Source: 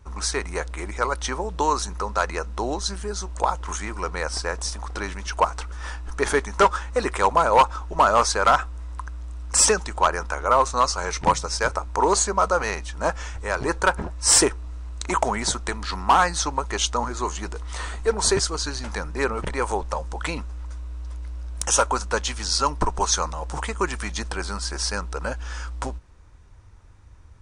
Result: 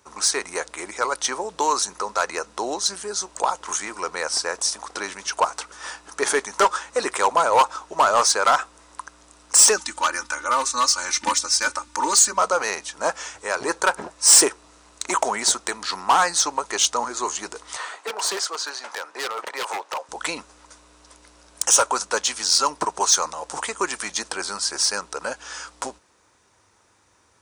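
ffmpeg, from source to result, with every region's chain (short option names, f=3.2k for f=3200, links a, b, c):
-filter_complex "[0:a]asettb=1/sr,asplit=3[a][b][c];[a]atrim=end=9.764[d];[b]atrim=start=9.76:end=12.38,asetpts=PTS-STARTPTS,afade=t=in:d=0.004:c=qsin,afade=t=out:st=2.616:d=0.004:c=qsin,equalizer=f=650:w=1.5:g=-14,bandreject=f=380:w=7,aecho=1:1:3.4:0.88,atrim=end_sample=115542[e];[c]atrim=start=12.376[f];[d][e]acrossfade=d=0.004:c1=hsin:c2=qsin[g];[g][f]acrossfade=d=0.004:c1=qsin:c2=hsin,asettb=1/sr,asplit=3[h][i][j];[h]atrim=end=17.764[k];[i]atrim=start=17.76:end=20.09,asetpts=PTS-STARTPTS,afade=t=in:d=0.004:c=qsin,afade=t=out:st=2.326:d=0.004:c=qsin,highpass=480,asplit=2[l][m];[m]highpass=f=720:p=1,volume=8dB,asoftclip=type=tanh:threshold=-9dB[n];[l][n]amix=inputs=2:normalize=0,lowpass=f=1.5k:p=1,volume=-6dB,aeval=exprs='0.0708*(abs(mod(val(0)/0.0708+3,4)-2)-1)':c=same[o];[j]atrim=start=20.086[p];[k][o]acrossfade=d=0.004:c1=hsin:c2=qsin[q];[q][p]acrossfade=d=0.004:c1=qsin:c2=hsin,highpass=160,bass=f=250:g=-11,treble=f=4k:g=7,acontrast=76,volume=-5.5dB"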